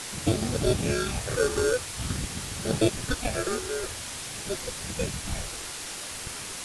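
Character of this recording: aliases and images of a low sample rate 1 kHz, jitter 0%; phasing stages 6, 0.48 Hz, lowest notch 170–2300 Hz; a quantiser's noise floor 6-bit, dither triangular; AAC

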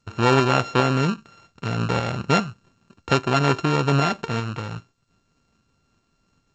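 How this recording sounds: a buzz of ramps at a fixed pitch in blocks of 32 samples; tremolo saw up 2.5 Hz, depth 35%; G.722

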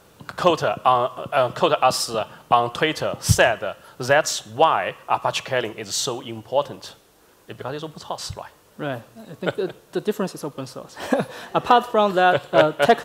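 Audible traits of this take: noise floor -54 dBFS; spectral tilt -4.0 dB/octave

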